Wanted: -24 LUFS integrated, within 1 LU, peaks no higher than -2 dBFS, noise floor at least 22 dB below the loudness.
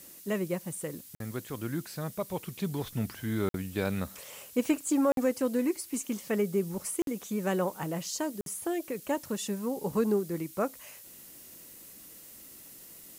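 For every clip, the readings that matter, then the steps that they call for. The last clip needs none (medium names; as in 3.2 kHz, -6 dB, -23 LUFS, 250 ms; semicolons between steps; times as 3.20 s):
dropouts 5; longest dropout 52 ms; noise floor -50 dBFS; noise floor target -54 dBFS; loudness -32.0 LUFS; peak level -15.0 dBFS; loudness target -24.0 LUFS
-> interpolate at 1.15/3.49/5.12/7.02/8.41 s, 52 ms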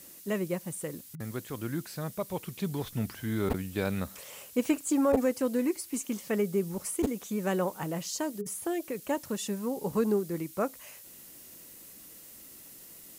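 dropouts 0; noise floor -50 dBFS; noise floor target -54 dBFS
-> noise reduction 6 dB, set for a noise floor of -50 dBFS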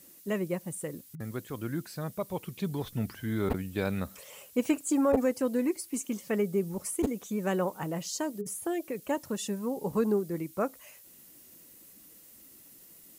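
noise floor -55 dBFS; loudness -32.0 LUFS; peak level -12.0 dBFS; loudness target -24.0 LUFS
-> trim +8 dB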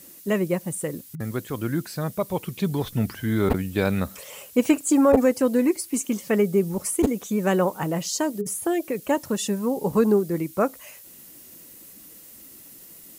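loudness -24.0 LUFS; peak level -4.0 dBFS; noise floor -47 dBFS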